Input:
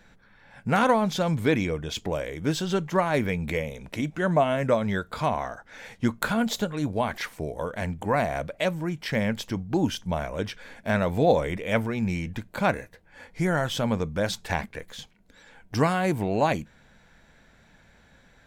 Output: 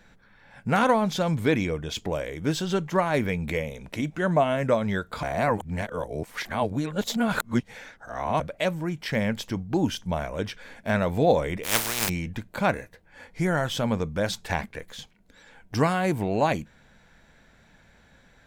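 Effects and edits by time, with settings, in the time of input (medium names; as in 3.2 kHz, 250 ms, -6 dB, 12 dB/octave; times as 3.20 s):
5.23–8.40 s: reverse
11.63–12.08 s: spectral contrast reduction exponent 0.19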